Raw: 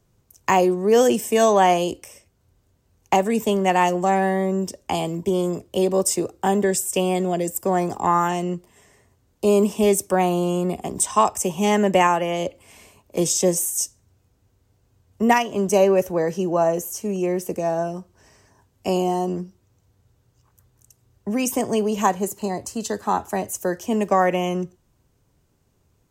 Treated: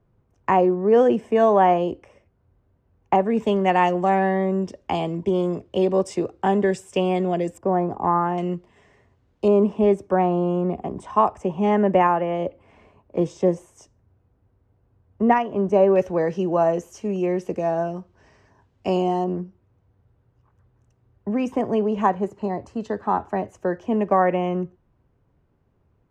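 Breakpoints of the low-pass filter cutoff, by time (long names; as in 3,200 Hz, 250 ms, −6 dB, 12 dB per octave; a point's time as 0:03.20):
1,600 Hz
from 0:03.37 2,900 Hz
from 0:07.58 1,200 Hz
from 0:08.38 3,100 Hz
from 0:09.48 1,500 Hz
from 0:15.96 3,300 Hz
from 0:19.24 1,800 Hz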